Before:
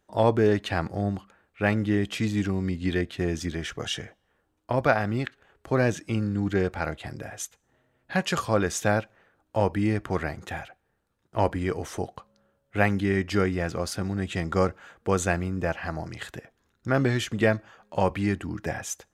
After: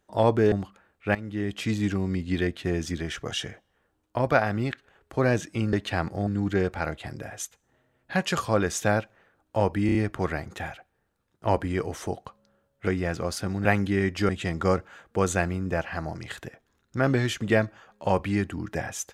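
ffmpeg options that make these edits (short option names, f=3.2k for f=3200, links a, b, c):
-filter_complex "[0:a]asplit=11[a][b][c][d][e][f][g][h][i][j][k];[a]atrim=end=0.522[l];[b]atrim=start=1.058:end=1.69,asetpts=PTS-STARTPTS,afade=t=out:st=0.628:d=0.004:c=hsin:silence=0.149624[m];[c]atrim=start=1.69:end=6.272,asetpts=PTS-STARTPTS,afade=t=in:d=0.56:silence=0.149624[n];[d]atrim=start=0.518:end=1.062[o];[e]atrim=start=6.268:end=9.892[p];[f]atrim=start=9.858:end=9.892[q];[g]atrim=start=9.858:end=9.892[r];[h]atrim=start=9.858:end=12.782[s];[i]atrim=start=13.418:end=14.202[t];[j]atrim=start=12.778:end=13.422[u];[k]atrim=start=14.198[v];[m][n]concat=n=2:v=0:a=1[w];[l][w]acrossfade=d=0.004:c1=hsin:c2=hsin[x];[x][o]acrossfade=d=0.004:c1=hsin:c2=hsin[y];[y][p]acrossfade=d=0.004:c1=hsin:c2=hsin[z];[z][q]acrossfade=d=0.004:c1=hsin:c2=hsin[aa];[aa][r]acrossfade=d=0.004:c1=hsin:c2=hsin[ab];[ab][s]acrossfade=d=0.004:c1=hsin:c2=hsin[ac];[ac][t]acrossfade=d=0.004:c1=hsin:c2=hsin[ad];[ad][u]acrossfade=d=0.004:c1=hsin:c2=hsin[ae];[ae][v]acrossfade=d=0.004:c1=hsin:c2=hsin"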